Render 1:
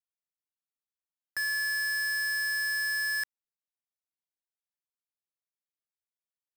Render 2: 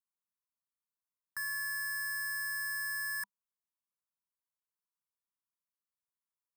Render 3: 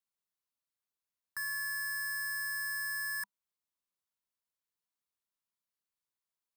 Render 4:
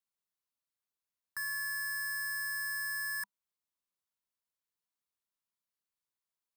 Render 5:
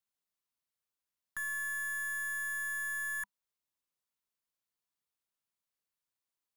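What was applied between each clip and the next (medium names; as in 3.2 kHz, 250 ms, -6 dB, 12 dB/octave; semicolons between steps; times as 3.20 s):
FFT filter 130 Hz 0 dB, 200 Hz +9 dB, 300 Hz -18 dB, 660 Hz -23 dB, 980 Hz +12 dB, 3 kHz -12 dB, 9.6 kHz +5 dB; trim -7 dB
peaking EQ 4 kHz +2.5 dB 0.54 oct
no audible change
tracing distortion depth 0.083 ms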